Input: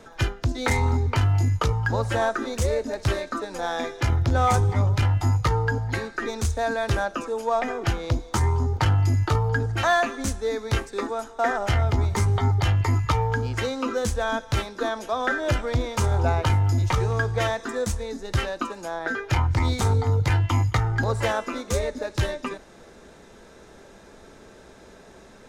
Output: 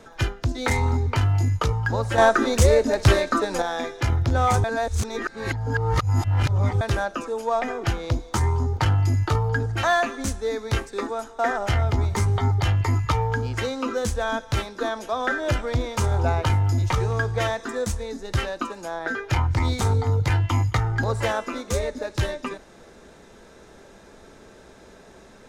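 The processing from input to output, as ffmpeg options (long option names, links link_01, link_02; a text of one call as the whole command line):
ffmpeg -i in.wav -filter_complex "[0:a]asplit=5[link_01][link_02][link_03][link_04][link_05];[link_01]atrim=end=2.182[link_06];[link_02]atrim=start=2.178:end=3.622,asetpts=PTS-STARTPTS,volume=7.5dB[link_07];[link_03]atrim=start=3.618:end=4.642[link_08];[link_04]atrim=start=4.638:end=6.812,asetpts=PTS-STARTPTS,areverse[link_09];[link_05]atrim=start=6.808[link_10];[link_06][link_07]acrossfade=duration=0.004:curve1=hsin:curve2=hsin[link_11];[link_11][link_08]acrossfade=duration=0.004:curve1=hsin:curve2=hsin[link_12];[link_12][link_09]acrossfade=duration=0.004:curve1=hsin:curve2=hsin[link_13];[link_13][link_10]acrossfade=duration=0.004:curve1=hsin:curve2=hsin" out.wav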